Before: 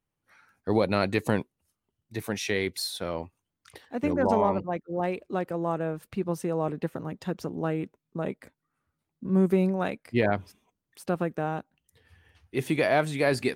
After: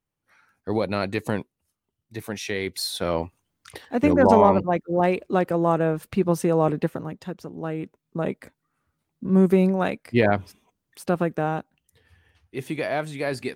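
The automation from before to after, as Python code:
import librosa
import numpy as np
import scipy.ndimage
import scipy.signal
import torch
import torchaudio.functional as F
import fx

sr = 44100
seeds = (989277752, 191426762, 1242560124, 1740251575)

y = fx.gain(x, sr, db=fx.line((2.58, -0.5), (3.13, 8.0), (6.75, 8.0), (7.42, -4.0), (8.21, 5.0), (11.52, 5.0), (12.58, -3.0)))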